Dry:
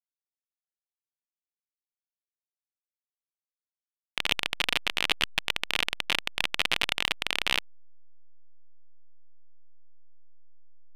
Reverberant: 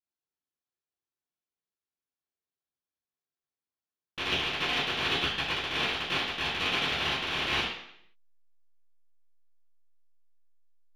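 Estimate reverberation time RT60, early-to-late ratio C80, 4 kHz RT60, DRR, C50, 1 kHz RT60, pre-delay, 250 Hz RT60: 0.70 s, 5.0 dB, 0.70 s, -18.5 dB, 2.0 dB, 0.70 s, 3 ms, 0.75 s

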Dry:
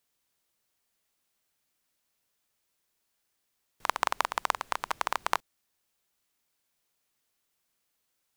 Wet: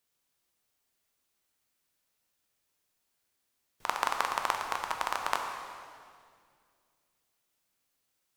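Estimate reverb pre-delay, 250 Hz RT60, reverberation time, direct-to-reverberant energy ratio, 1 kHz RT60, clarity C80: 7 ms, 2.8 s, 2.2 s, 3.0 dB, 2.0 s, 5.5 dB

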